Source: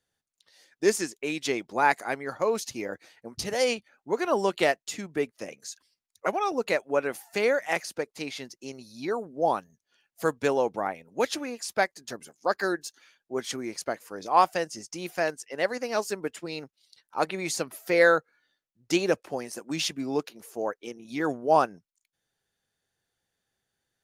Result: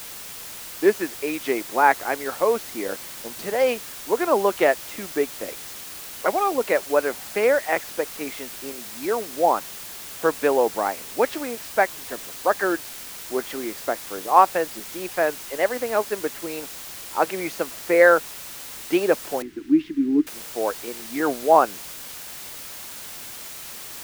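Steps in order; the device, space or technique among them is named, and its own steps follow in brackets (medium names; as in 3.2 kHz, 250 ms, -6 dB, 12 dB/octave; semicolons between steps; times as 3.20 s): wax cylinder (band-pass 270–2000 Hz; wow and flutter; white noise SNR 13 dB); 19.42–20.27 s: FFT filter 220 Hz 0 dB, 310 Hz +14 dB, 560 Hz -27 dB, 1.7 kHz -8 dB, 11 kHz -23 dB; trim +6 dB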